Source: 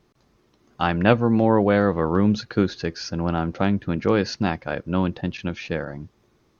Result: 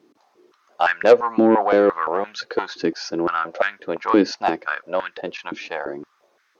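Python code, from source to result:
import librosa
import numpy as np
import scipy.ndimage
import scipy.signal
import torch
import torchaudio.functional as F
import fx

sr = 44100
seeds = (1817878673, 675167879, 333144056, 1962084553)

y = fx.fold_sine(x, sr, drive_db=5, ceiling_db=-3.0)
y = fx.filter_held_highpass(y, sr, hz=5.8, low_hz=290.0, high_hz=1600.0)
y = y * librosa.db_to_amplitude(-8.0)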